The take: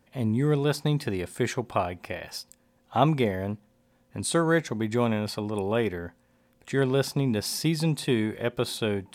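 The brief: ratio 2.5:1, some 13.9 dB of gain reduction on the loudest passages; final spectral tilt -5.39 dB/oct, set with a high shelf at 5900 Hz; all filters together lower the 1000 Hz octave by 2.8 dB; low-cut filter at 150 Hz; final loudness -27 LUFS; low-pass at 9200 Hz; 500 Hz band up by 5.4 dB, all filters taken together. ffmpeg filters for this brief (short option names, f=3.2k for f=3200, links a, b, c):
-af "highpass=150,lowpass=9.2k,equalizer=f=500:t=o:g=8.5,equalizer=f=1k:t=o:g=-8.5,highshelf=f=5.9k:g=-5.5,acompressor=threshold=-37dB:ratio=2.5,volume=9.5dB"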